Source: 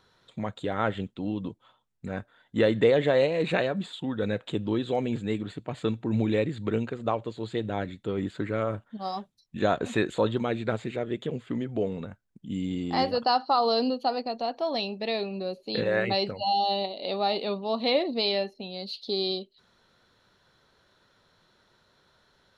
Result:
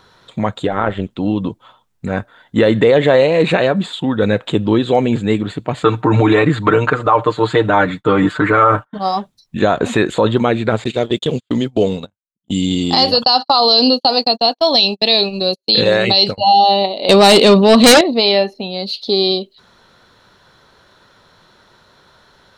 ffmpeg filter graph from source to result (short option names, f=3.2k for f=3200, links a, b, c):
-filter_complex "[0:a]asettb=1/sr,asplit=3[a][b][c];[a]atrim=end=0.674[d];[b]atrim=start=0.67:end=1.11,asetpts=PTS-STARTPTS,afade=t=in:d=0.004:c=qsin,afade=t=out:st=0.436:d=0.004:c=qsin,acrossover=split=2500[e][f];[f]acompressor=threshold=-50dB:ratio=4:attack=1:release=60[g];[e][g]amix=inputs=2:normalize=0,tremolo=f=190:d=0.621[h];[c]atrim=start=1.106[i];[d][h]acrossfade=d=0.004:c1=hsin:c2=qsin[j];[j][i]acrossfade=d=0.004:c1=qsin:c2=hsin,asettb=1/sr,asplit=3[k][l][m];[k]atrim=end=5.844[n];[l]atrim=start=5.84:end=8.99,asetpts=PTS-STARTPTS,afade=t=in:d=0.004:c=qsin,afade=t=out:st=3.146:d=0.004:c=qsin,agate=range=-33dB:threshold=-45dB:ratio=3:release=100:detection=peak,equalizer=f=1.2k:t=o:w=1.3:g=13.5,aecho=1:1:6.6:0.84,atrim=end_sample=138915[o];[m]atrim=start=8.986[p];[n][o]acrossfade=d=0.004:c1=hsin:c2=qsin[q];[q][p]acrossfade=d=0.004:c1=qsin:c2=hsin,asettb=1/sr,asplit=3[r][s][t];[r]atrim=end=10.844[u];[s]atrim=start=10.84:end=16.38,asetpts=PTS-STARTPTS,afade=t=in:d=0.004:c=qsin,afade=t=out:st=5.536:d=0.004:c=qsin,highshelf=f=2.7k:t=q:w=1.5:g=10.5,agate=range=-45dB:threshold=-35dB:ratio=16:release=100:detection=peak[v];[t]atrim=start=16.376[w];[u][v]acrossfade=d=0.004:c1=hsin:c2=qsin[x];[x][w]acrossfade=d=0.004:c1=qsin:c2=hsin,asettb=1/sr,asplit=3[y][z][aa];[y]atrim=end=17.094[ab];[z]atrim=start=17.09:end=18.01,asetpts=PTS-STARTPTS,afade=t=in:d=0.004:c=qsin,afade=t=out:st=0.916:d=0.004:c=qsin,equalizer=f=840:w=1.5:g=-9,aeval=exprs='0.188*sin(PI/2*3.16*val(0)/0.188)':c=same[ac];[aa]atrim=start=18.006[ad];[ab][ac]acrossfade=d=0.004:c1=hsin:c2=qsin[ae];[ae][ad]acrossfade=d=0.004:c1=qsin:c2=hsin,equalizer=f=1k:w=1.5:g=3,alimiter=level_in=14.5dB:limit=-1dB:release=50:level=0:latency=1,volume=-1dB"